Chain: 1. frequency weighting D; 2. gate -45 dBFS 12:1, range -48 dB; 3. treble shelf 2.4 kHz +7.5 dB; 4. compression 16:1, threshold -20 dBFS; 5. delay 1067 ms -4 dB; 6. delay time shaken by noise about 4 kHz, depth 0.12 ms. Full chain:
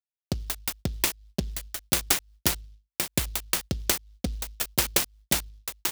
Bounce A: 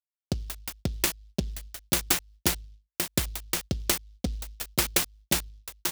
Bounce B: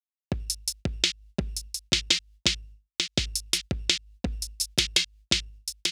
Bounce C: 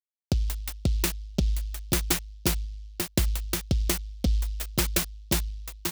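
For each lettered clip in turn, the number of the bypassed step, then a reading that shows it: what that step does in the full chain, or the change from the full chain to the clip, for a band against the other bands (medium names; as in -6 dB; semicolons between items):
3, 250 Hz band +1.5 dB; 6, 1 kHz band -8.0 dB; 1, 125 Hz band +9.0 dB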